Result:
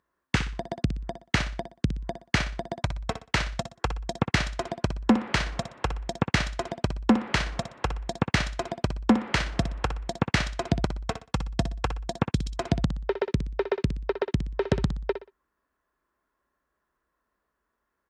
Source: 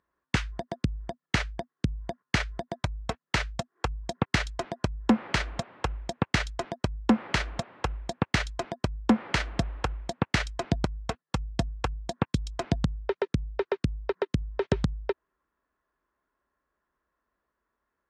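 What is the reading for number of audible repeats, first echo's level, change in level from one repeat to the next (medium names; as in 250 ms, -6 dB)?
3, -10.0 dB, -10.5 dB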